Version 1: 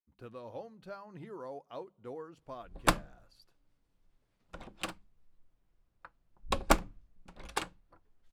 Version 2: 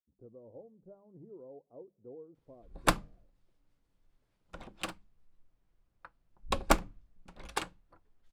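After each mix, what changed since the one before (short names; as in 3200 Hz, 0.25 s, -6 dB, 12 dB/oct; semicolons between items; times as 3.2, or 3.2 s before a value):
speech: add ladder low-pass 600 Hz, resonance 30%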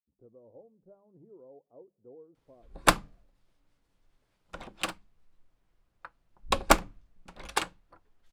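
background +6.5 dB; master: add low shelf 400 Hz -5.5 dB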